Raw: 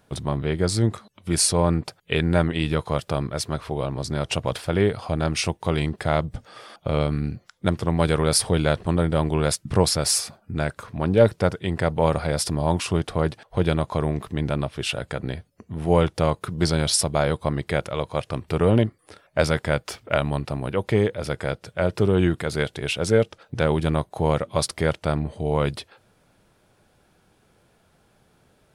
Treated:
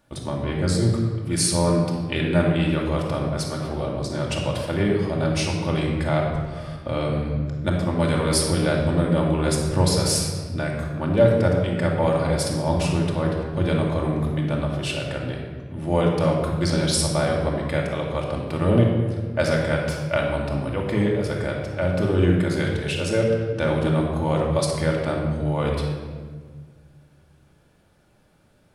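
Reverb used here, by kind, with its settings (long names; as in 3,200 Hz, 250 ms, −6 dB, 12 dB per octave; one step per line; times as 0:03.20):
rectangular room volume 1,800 cubic metres, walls mixed, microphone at 2.5 metres
level −4.5 dB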